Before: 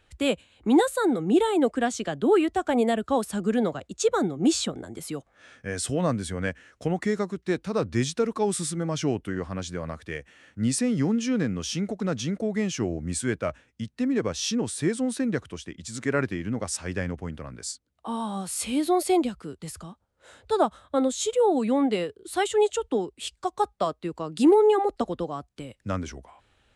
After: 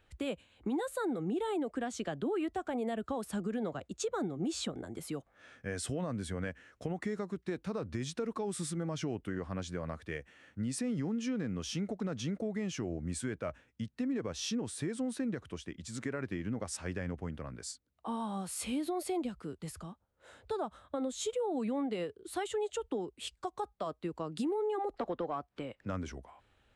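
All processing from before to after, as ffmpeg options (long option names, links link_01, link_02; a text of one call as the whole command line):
ffmpeg -i in.wav -filter_complex "[0:a]asettb=1/sr,asplit=3[link_01][link_02][link_03];[link_01]atrim=end=24.944[link_04];[link_02]atrim=start=24.94:end=25.9,asetpts=PTS-STARTPTS,afade=type=in:duration=0.004:curve=qsin,afade=type=out:start_time=0.956:duration=0.004:curve=qsin,highshelf=frequency=10000:gain=-9.5,acompressor=mode=upward:threshold=-48dB:ratio=2.5:attack=3.2:release=140:knee=2.83:detection=peak,asplit=2[link_05][link_06];[link_06]highpass=frequency=720:poles=1,volume=15dB,asoftclip=type=tanh:threshold=-14.5dB[link_07];[link_05][link_07]amix=inputs=2:normalize=0,lowpass=frequency=1600:poles=1,volume=-6dB[link_08];[link_03]atrim=start=25.896[link_09];[link_04][link_08]acrossfade=duration=0.004:curve1=hsin:curve2=qsin[link_10];[link_10][link_09]acrossfade=duration=0.004:curve1=qsin:curve2=hsin,equalizer=frequency=7200:width=0.45:gain=-5,alimiter=limit=-19.5dB:level=0:latency=1:release=96,acompressor=threshold=-30dB:ratio=2,volume=-4dB" out.wav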